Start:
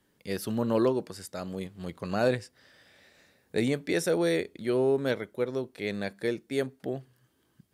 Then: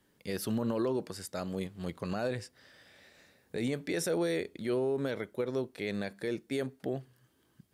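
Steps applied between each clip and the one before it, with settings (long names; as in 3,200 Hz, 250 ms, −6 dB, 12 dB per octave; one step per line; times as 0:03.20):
brickwall limiter −23 dBFS, peak gain reduction 10 dB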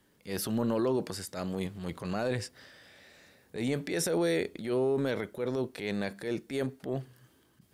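transient designer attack −8 dB, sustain +4 dB
level +3 dB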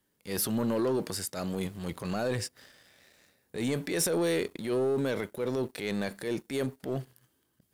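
high-shelf EQ 7,300 Hz +8.5 dB
leveller curve on the samples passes 2
level −6 dB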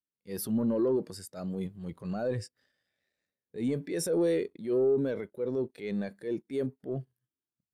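every bin expanded away from the loudest bin 1.5 to 1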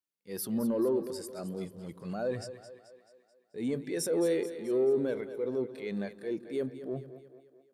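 low-shelf EQ 130 Hz −11.5 dB
echo with a time of its own for lows and highs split 300 Hz, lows 97 ms, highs 217 ms, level −12 dB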